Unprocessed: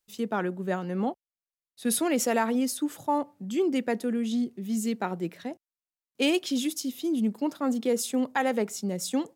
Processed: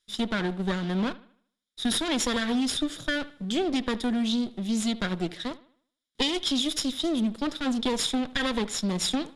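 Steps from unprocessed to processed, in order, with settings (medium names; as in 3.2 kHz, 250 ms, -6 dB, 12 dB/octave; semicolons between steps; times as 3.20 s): comb filter that takes the minimum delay 0.57 ms; elliptic low-pass 11 kHz, stop band 50 dB; peaking EQ 3.7 kHz +11.5 dB 0.82 oct; compression, threshold -28 dBFS, peak gain reduction 9.5 dB; on a send: bucket-brigade echo 76 ms, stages 2048, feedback 40%, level -19 dB; on the sum: trim +5 dB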